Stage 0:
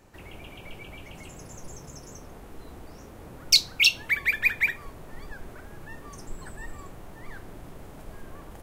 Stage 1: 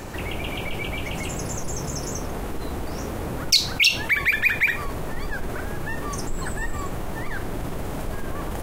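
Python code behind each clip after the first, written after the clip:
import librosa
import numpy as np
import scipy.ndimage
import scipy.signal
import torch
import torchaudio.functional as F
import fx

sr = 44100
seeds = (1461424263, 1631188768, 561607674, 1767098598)

y = fx.env_flatten(x, sr, amount_pct=50)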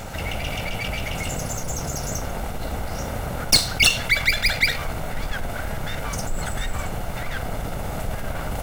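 y = fx.lower_of_two(x, sr, delay_ms=1.4)
y = fx.quant_companded(y, sr, bits=8)
y = F.gain(torch.from_numpy(y), 3.0).numpy()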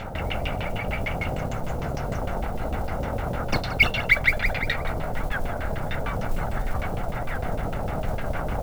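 y = fx.filter_lfo_lowpass(x, sr, shape='saw_down', hz=6.6, low_hz=450.0, high_hz=3300.0, q=1.3)
y = fx.mod_noise(y, sr, seeds[0], snr_db=27)
y = y + 10.0 ** (-14.0 / 20.0) * np.pad(y, (int(175 * sr / 1000.0), 0))[:len(y)]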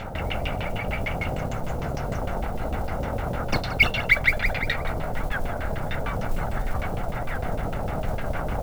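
y = x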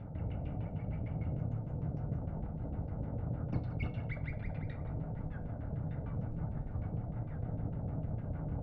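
y = fx.bandpass_q(x, sr, hz=130.0, q=1.2)
y = fx.rev_fdn(y, sr, rt60_s=0.38, lf_ratio=0.9, hf_ratio=0.95, size_ms=20.0, drr_db=7.5)
y = F.gain(torch.from_numpy(y), -4.0).numpy()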